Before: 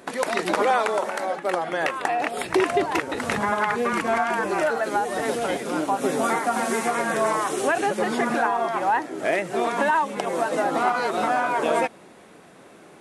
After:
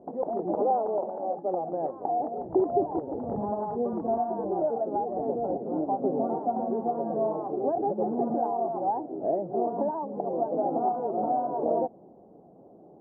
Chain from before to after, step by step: elliptic low-pass 780 Hz, stop band 80 dB; gain -2.5 dB

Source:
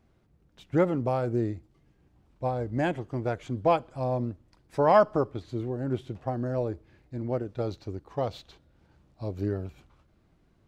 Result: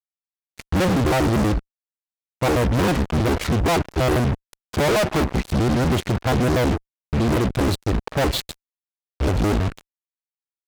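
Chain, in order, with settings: trilling pitch shifter -9 st, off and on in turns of 80 ms; fuzz box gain 49 dB, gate -47 dBFS; gain -4 dB

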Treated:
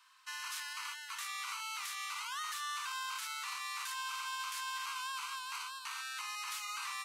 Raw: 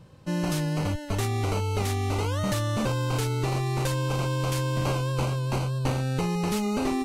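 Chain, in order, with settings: steep high-pass 1000 Hz 72 dB/oct; limiter -32 dBFS, peak gain reduction 10.5 dB

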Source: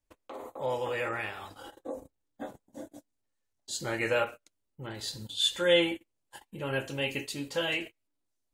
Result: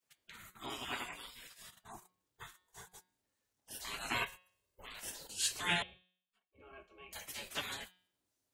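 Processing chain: 5.82–7.13 octave resonator C#, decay 0.18 s; spectral gate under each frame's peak -20 dB weak; 4.14–4.85 comb 1.9 ms, depth 67%; de-hum 182.2 Hz, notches 27; in parallel at -9.5 dB: soft clip -37 dBFS, distortion -10 dB; on the sum: gain +2 dB

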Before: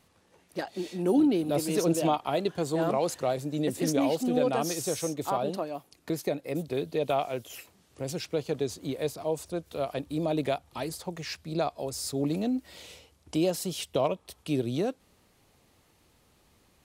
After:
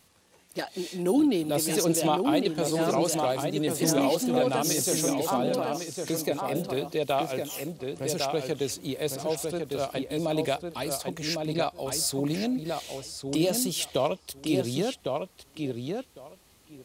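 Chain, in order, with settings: high shelf 2900 Hz +8.5 dB; darkening echo 1.105 s, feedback 15%, low-pass 3100 Hz, level -4 dB

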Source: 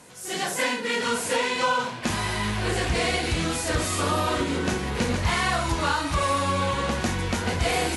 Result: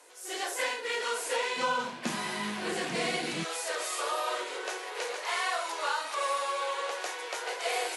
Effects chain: steep high-pass 330 Hz 48 dB/oct, from 1.56 s 150 Hz, from 3.43 s 410 Hz; gain -6 dB

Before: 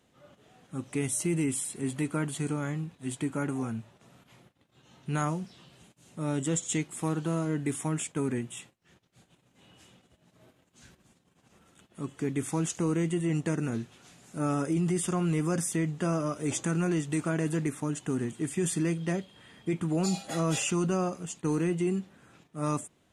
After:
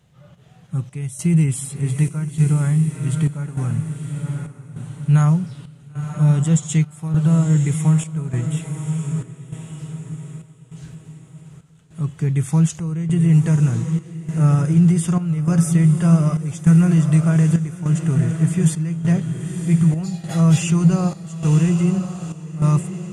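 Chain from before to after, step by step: resonant low shelf 200 Hz +8.5 dB, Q 3; diffused feedback echo 1.001 s, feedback 42%, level -7.5 dB; chopper 0.84 Hz, depth 65%, duty 75%; gain +4 dB

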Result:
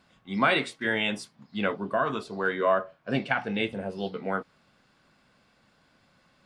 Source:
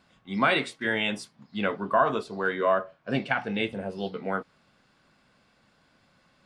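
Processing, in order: 1.72–2.2 bell 2000 Hz -> 490 Hz -9.5 dB 0.74 oct

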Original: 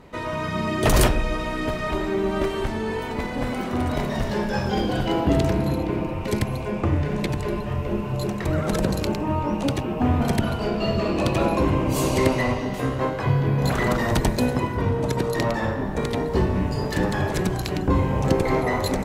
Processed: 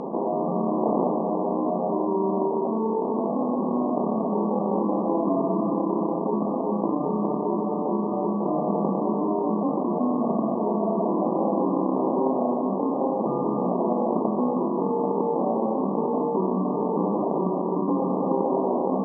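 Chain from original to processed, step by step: sample-and-hold 33×; brick-wall FIR band-pass 170–1200 Hz; air absorption 58 m; fast leveller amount 70%; gain -4 dB

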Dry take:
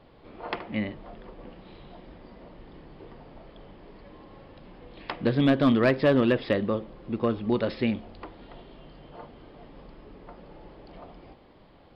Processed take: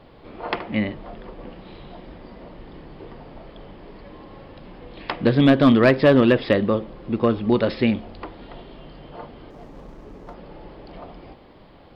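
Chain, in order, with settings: 9.5–10.34 median filter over 15 samples; gain +6.5 dB

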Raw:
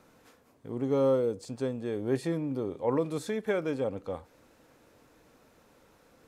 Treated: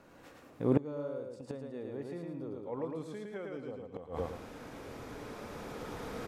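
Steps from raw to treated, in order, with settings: Doppler pass-by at 2.8, 24 m/s, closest 20 m; recorder AGC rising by 7.1 dB/s; high shelf 4600 Hz -8.5 dB; on a send: feedback echo 0.11 s, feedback 33%, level -3 dB; on the sum: flipped gate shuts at -27 dBFS, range -24 dB; gain +12.5 dB

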